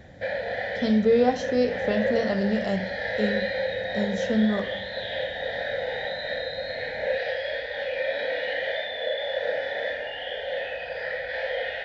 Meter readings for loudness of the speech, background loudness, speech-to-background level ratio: -25.5 LUFS, -29.5 LUFS, 4.0 dB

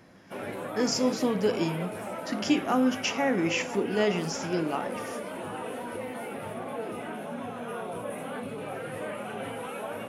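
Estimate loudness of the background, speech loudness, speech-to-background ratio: -36.5 LUFS, -28.5 LUFS, 8.0 dB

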